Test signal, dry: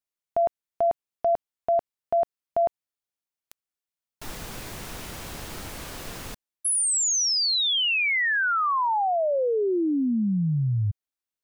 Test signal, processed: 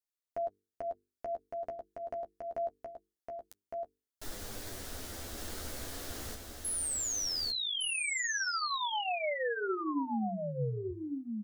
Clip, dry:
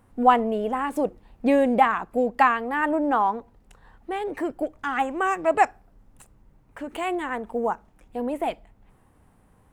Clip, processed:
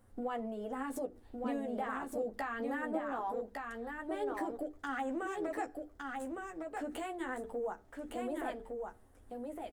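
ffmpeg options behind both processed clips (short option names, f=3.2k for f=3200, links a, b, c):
-af "equalizer=f=160:t=o:w=0.67:g=-12,equalizer=f=1k:t=o:w=0.67:g=-8,equalizer=f=2.5k:t=o:w=0.67:g=-8,acompressor=threshold=-30dB:ratio=6:attack=2.1:release=124:knee=1:detection=rms,equalizer=f=250:t=o:w=0.26:g=3,bandreject=f=50:t=h:w=6,bandreject=f=100:t=h:w=6,bandreject=f=150:t=h:w=6,bandreject=f=200:t=h:w=6,bandreject=f=250:t=h:w=6,bandreject=f=300:t=h:w=6,bandreject=f=350:t=h:w=6,bandreject=f=400:t=h:w=6,bandreject=f=450:t=h:w=6,flanger=delay=9.6:depth=4.6:regen=-15:speed=0.24:shape=sinusoidal,aecho=1:1:1160:0.631"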